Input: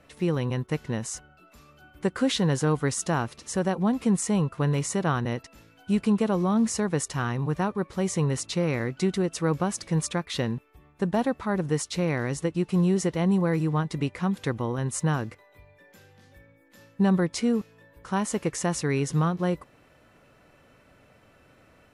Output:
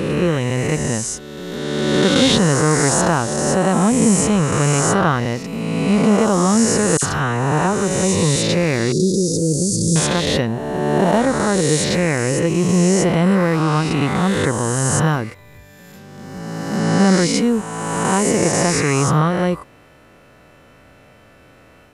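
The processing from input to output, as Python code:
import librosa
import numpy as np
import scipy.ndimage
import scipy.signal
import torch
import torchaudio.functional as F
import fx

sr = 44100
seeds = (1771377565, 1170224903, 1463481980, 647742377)

y = fx.spec_swells(x, sr, rise_s=2.17)
y = fx.dispersion(y, sr, late='lows', ms=55.0, hz=2500.0, at=(6.97, 8.36))
y = fx.cheby2_bandstop(y, sr, low_hz=770.0, high_hz=2800.0, order=4, stop_db=40, at=(8.92, 9.96))
y = y * 10.0 ** (6.5 / 20.0)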